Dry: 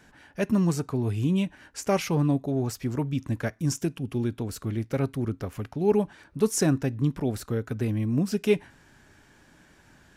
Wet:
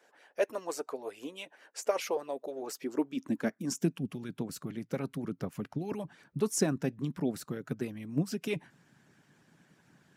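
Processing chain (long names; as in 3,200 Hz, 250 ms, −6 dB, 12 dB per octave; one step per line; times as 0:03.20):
harmonic and percussive parts rebalanced harmonic −16 dB
high-pass filter sweep 510 Hz → 150 Hz, 0:02.27–0:04.15
level −4 dB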